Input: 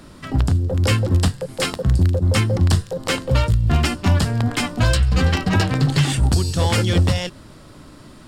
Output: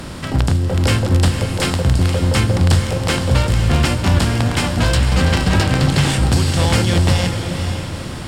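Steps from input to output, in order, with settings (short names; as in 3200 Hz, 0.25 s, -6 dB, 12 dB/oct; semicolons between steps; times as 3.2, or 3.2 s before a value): per-bin compression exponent 0.6; diffused feedback echo 0.503 s, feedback 40%, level -7 dB; gain -1 dB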